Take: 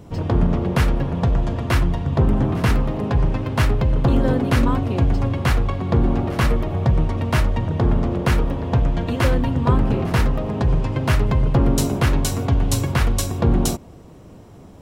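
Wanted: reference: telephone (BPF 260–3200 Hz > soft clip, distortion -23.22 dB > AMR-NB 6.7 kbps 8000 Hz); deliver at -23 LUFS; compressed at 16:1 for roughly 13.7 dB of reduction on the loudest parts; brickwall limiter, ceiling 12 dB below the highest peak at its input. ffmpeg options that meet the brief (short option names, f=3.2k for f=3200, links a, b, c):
-af "acompressor=threshold=-26dB:ratio=16,alimiter=level_in=2dB:limit=-24dB:level=0:latency=1,volume=-2dB,highpass=260,lowpass=3.2k,asoftclip=threshold=-29dB,volume=20.5dB" -ar 8000 -c:a libopencore_amrnb -b:a 6700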